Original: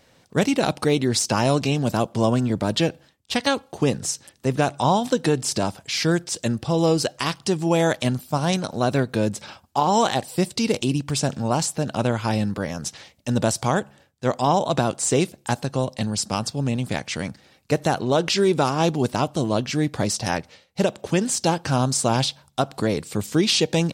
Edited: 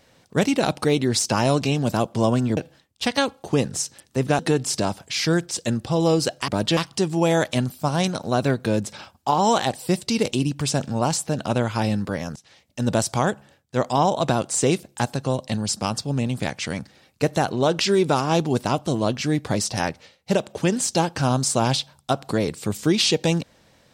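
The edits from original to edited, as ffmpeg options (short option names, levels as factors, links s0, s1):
-filter_complex "[0:a]asplit=6[s0][s1][s2][s3][s4][s5];[s0]atrim=end=2.572[s6];[s1]atrim=start=2.858:end=4.682[s7];[s2]atrim=start=5.168:end=7.262[s8];[s3]atrim=start=2.568:end=2.862[s9];[s4]atrim=start=7.258:end=12.85,asetpts=PTS-STARTPTS,afade=t=out:st=5.588:d=0.004:c=hsin:silence=0.0749894[s10];[s5]atrim=start=12.85,asetpts=PTS-STARTPTS,afade=t=in:d=0.56:silence=0.0749894[s11];[s6][s7]acrossfade=d=0.004:c1=hsin:c2=hsin[s12];[s12][s8]acrossfade=d=0.004:c1=hsin:c2=hsin[s13];[s13][s9]acrossfade=d=0.004:c1=hsin:c2=hsin[s14];[s10][s11]concat=n=2:v=0:a=1[s15];[s14][s15]acrossfade=d=0.004:c1=hsin:c2=hsin"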